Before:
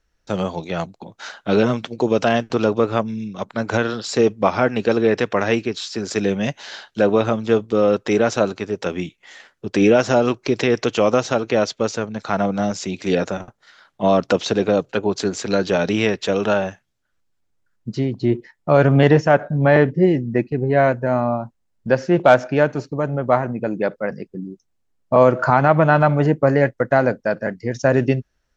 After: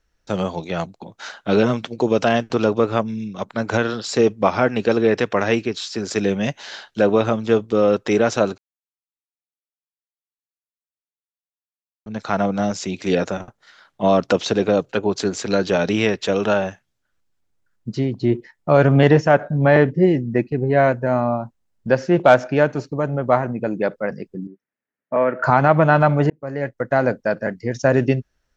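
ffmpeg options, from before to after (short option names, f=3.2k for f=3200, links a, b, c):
-filter_complex "[0:a]asettb=1/sr,asplit=3[a][b][c];[a]atrim=end=24.474[d];[b]atrim=start=24.47:end=25.44,asetpts=PTS-STARTPTS,afade=t=in:d=0.004:c=qsin,afade=t=out:st=0.966:d=0.004:c=qsin,highpass=310,equalizer=f=350:t=q:w=4:g=-7,equalizer=f=500:t=q:w=4:g=-4,equalizer=f=760:t=q:w=4:g=-9,equalizer=f=1.1k:t=q:w=4:g=-7,equalizer=f=1.8k:t=q:w=4:g=6,lowpass=f=2.3k:w=0.5412,lowpass=f=2.3k:w=1.3066[e];[c]atrim=start=25.436[f];[d][e]acrossfade=d=0.004:c1=hsin:c2=qsin[g];[g][f]acrossfade=d=0.004:c1=qsin:c2=hsin,asplit=4[h][i][j][k];[h]atrim=end=8.58,asetpts=PTS-STARTPTS,afade=t=out:st=8.576:d=0.004:c=hsin[l];[i]atrim=start=8.58:end=12.06,asetpts=PTS-STARTPTS,volume=0[m];[j]atrim=start=12.06:end=26.3,asetpts=PTS-STARTPTS,afade=t=in:d=0.004:c=hsin,afade=t=out:st=14.236:d=0.004:c=hsin[n];[k]atrim=start=26.3,asetpts=PTS-STARTPTS,afade=t=in:d=0.84[o];[l][m][n][o]concat=n=4:v=0:a=1"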